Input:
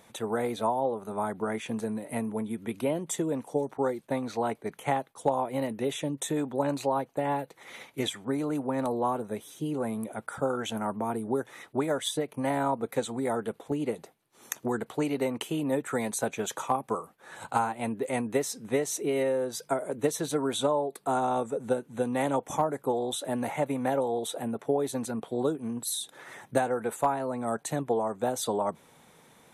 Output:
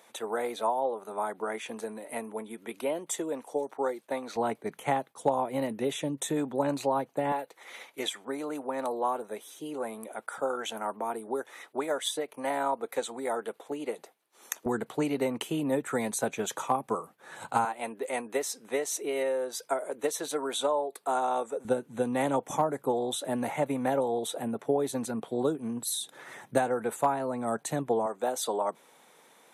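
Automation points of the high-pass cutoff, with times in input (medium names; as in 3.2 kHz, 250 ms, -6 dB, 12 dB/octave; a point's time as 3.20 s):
390 Hz
from 4.36 s 130 Hz
from 7.32 s 410 Hz
from 14.66 s 110 Hz
from 17.65 s 420 Hz
from 21.65 s 110 Hz
from 28.06 s 350 Hz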